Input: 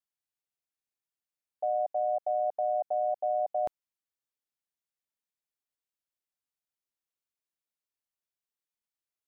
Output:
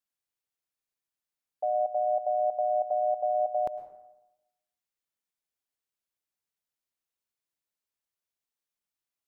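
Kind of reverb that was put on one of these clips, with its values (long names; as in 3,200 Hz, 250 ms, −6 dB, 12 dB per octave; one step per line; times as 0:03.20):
dense smooth reverb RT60 0.96 s, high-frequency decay 0.55×, pre-delay 95 ms, DRR 12.5 dB
level +1 dB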